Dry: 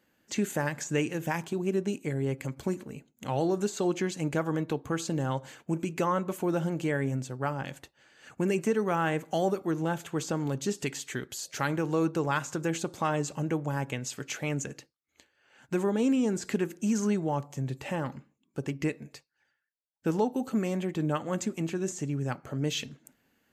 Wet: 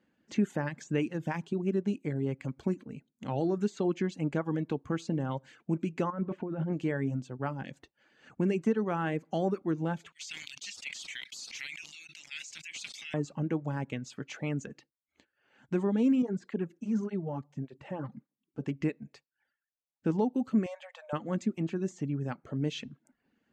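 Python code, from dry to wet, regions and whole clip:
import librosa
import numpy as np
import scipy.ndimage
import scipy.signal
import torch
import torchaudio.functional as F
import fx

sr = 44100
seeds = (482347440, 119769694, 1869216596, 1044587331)

y = fx.chain(x, sr, fx.lowpass(hz=2100.0, slope=12),
    fx.over_compress(threshold_db=-32.0, ratio=-1.0), at=(6.1, 6.73))
y = fx.chain(y, sr, fx.ellip_highpass(hz=2200.0, order=4, stop_db=50),
    fx.leveller(passes=2),
    fx.sustainer(db_per_s=22.0), at=(10.12, 13.14))
y = fx.chain(y, sr, fx.high_shelf(hz=2300.0, db=-7.0),
    fx.flanger_cancel(hz=1.7, depth_ms=5.7), at=(16.22, 18.61))
y = fx.chain(y, sr, fx.brickwall_highpass(low_hz=500.0),
    fx.band_squash(depth_pct=40), at=(20.66, 21.13))
y = scipy.signal.sosfilt(scipy.signal.bessel(2, 3900.0, 'lowpass', norm='mag', fs=sr, output='sos'), y)
y = fx.peak_eq(y, sr, hz=220.0, db=7.0, octaves=1.3)
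y = fx.dereverb_blind(y, sr, rt60_s=0.51)
y = y * 10.0 ** (-4.5 / 20.0)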